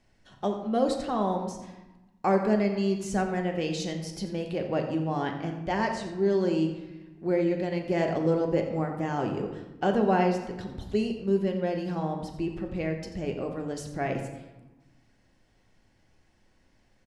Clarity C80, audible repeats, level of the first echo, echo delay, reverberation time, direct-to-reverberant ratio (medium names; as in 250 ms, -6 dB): 8.0 dB, 1, -12.5 dB, 88 ms, 1.1 s, 2.5 dB